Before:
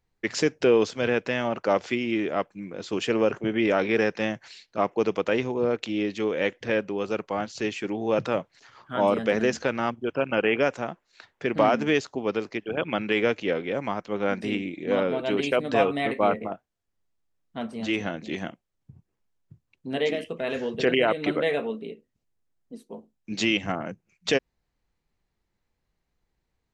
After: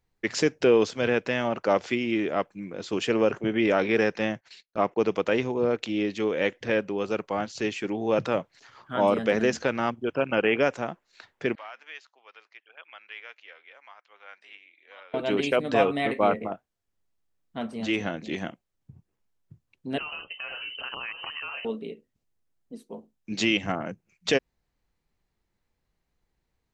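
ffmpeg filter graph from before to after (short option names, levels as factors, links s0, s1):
-filter_complex "[0:a]asettb=1/sr,asplit=3[s0][s1][s2];[s0]atrim=end=4.194[s3];[s1]atrim=start=4.19:end=5.1,asetpts=PTS-STARTPTS,afade=t=in:d=0.004:c=qsin,afade=t=out:st=0.906:d=0.004:c=qsin,agate=range=0.0501:threshold=0.00398:ratio=16:release=100:detection=peak,highshelf=f=7100:g=-7[s4];[s2]atrim=start=5.096[s5];[s3][s4]acrossfade=d=0.004:c1=hsin:c2=qsin[s6];[s6][s5]acrossfade=d=0.004:c1=qsin:c2=hsin,asettb=1/sr,asplit=3[s7][s8][s9];[s7]atrim=end=11.554[s10];[s8]atrim=start=11.55:end=15.14,asetpts=PTS-STARTPTS,afade=t=in:d=0.004:c=qsin,afade=t=out:st=3.586:d=0.004:c=qsin,highpass=750,lowpass=2200,aderivative[s11];[s9]atrim=start=15.136[s12];[s10][s11]acrossfade=d=0.004:c1=hsin:c2=qsin[s13];[s13][s12]acrossfade=d=0.004:c1=qsin:c2=hsin,asettb=1/sr,asplit=3[s14][s15][s16];[s14]atrim=end=19.984[s17];[s15]atrim=start=19.98:end=21.65,asetpts=PTS-STARTPTS,afade=t=in:d=0.004:c=qsin,afade=t=out:st=1.666:d=0.004:c=qsin,equalizer=f=350:t=o:w=1.3:g=-9,acompressor=threshold=0.0251:ratio=4:attack=3.2:release=140:knee=1:detection=peak,lowpass=f=2700:t=q:w=0.5098,lowpass=f=2700:t=q:w=0.6013,lowpass=f=2700:t=q:w=0.9,lowpass=f=2700:t=q:w=2.563,afreqshift=-3200[s18];[s16]atrim=start=21.646[s19];[s17][s18]acrossfade=d=0.004:c1=hsin:c2=qsin[s20];[s20][s19]acrossfade=d=0.004:c1=qsin:c2=hsin"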